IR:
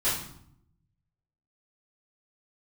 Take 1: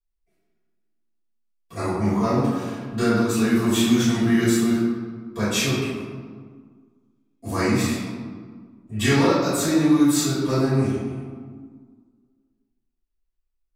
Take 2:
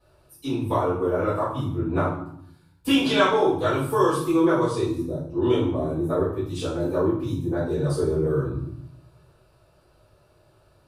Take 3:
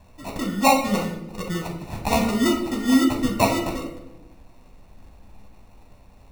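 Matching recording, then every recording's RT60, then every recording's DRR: 2; 1.7, 0.70, 0.95 seconds; −16.0, −12.5, 1.0 decibels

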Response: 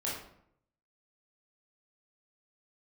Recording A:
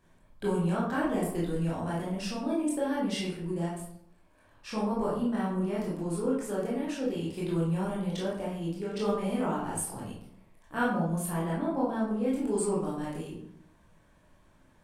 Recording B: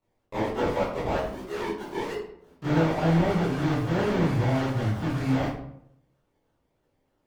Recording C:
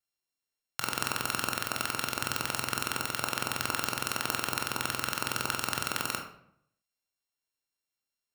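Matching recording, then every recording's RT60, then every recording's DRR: A; 0.70, 0.70, 0.70 seconds; −6.5, −13.0, 2.0 decibels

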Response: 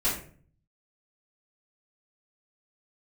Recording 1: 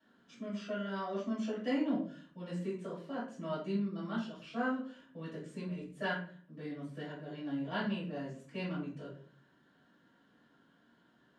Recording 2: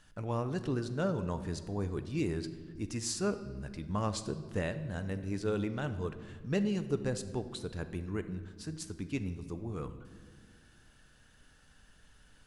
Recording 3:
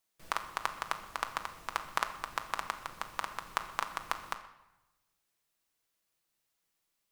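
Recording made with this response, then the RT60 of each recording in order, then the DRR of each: 1; 0.45 s, non-exponential decay, 1.0 s; −11.0, 9.5, 6.0 decibels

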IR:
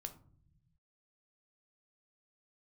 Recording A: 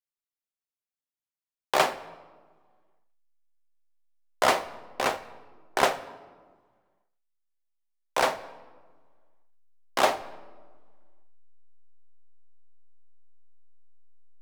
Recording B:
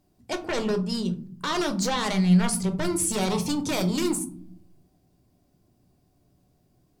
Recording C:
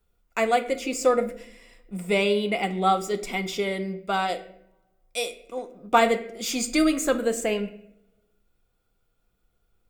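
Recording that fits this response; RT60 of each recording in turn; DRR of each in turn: B; 1.6 s, non-exponential decay, 0.70 s; 10.0, 6.5, 7.5 decibels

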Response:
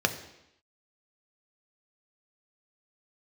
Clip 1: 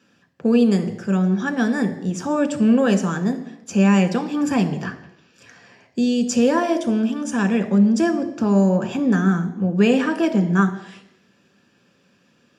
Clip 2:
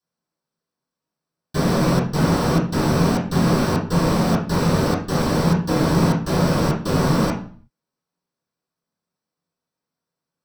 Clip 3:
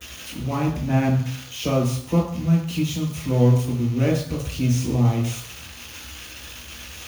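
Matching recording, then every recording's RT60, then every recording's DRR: 1; 0.85, 0.45, 0.60 seconds; 6.0, −11.0, −11.5 decibels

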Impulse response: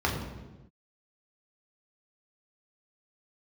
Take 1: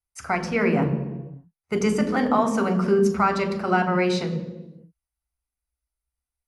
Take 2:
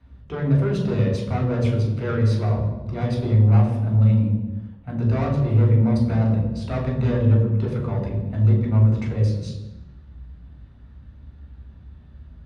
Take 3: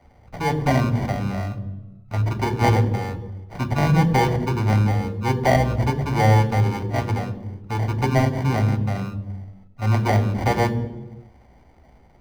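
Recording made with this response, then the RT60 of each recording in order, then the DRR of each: 2; non-exponential decay, non-exponential decay, non-exponential decay; 5.0, −2.0, 10.0 decibels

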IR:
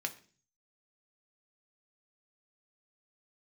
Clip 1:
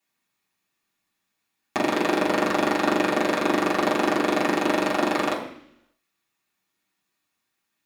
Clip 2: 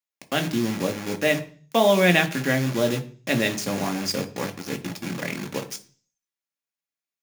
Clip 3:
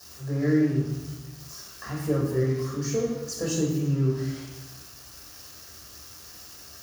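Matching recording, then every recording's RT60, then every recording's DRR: 2; 0.70, 0.40, 1.1 seconds; −7.0, 5.0, −4.5 decibels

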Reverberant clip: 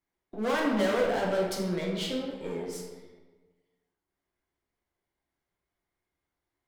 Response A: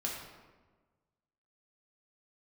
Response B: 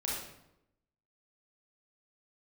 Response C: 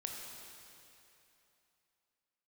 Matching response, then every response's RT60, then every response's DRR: A; 1.3, 0.85, 3.0 seconds; −3.0, −5.0, 0.0 decibels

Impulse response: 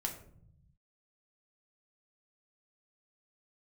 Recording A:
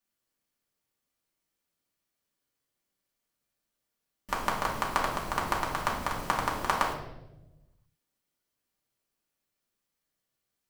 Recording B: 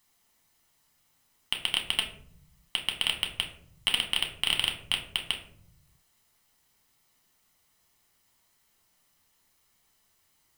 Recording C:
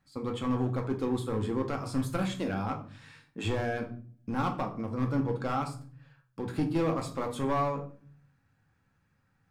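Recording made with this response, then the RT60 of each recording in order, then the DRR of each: B; 1.0, 0.65, 0.45 seconds; −3.0, 1.5, 2.0 decibels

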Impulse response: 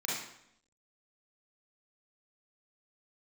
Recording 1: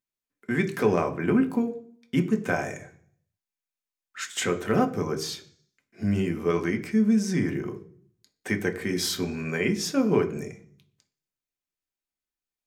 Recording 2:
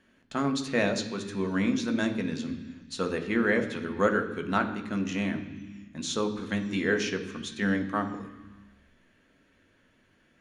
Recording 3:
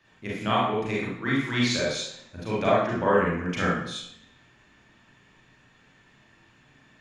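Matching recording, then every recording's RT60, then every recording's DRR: 3; 0.55, 1.3, 0.75 seconds; 4.0, 4.5, −6.5 decibels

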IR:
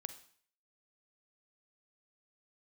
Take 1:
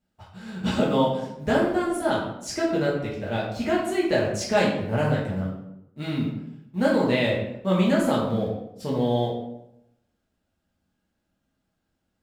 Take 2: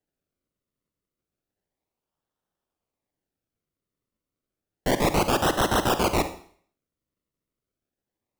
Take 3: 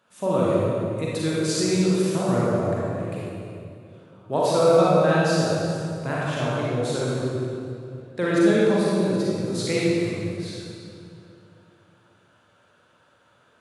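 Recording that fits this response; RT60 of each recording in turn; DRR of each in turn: 2; 0.80, 0.50, 2.6 seconds; −6.5, 10.0, −7.0 decibels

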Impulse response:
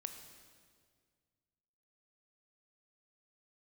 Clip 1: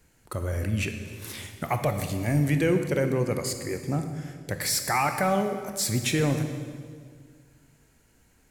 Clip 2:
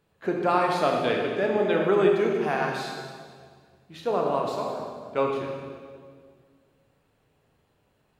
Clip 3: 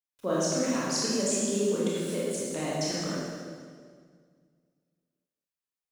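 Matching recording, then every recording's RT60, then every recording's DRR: 1; 1.9, 1.9, 1.9 seconds; 6.5, 0.0, −7.5 decibels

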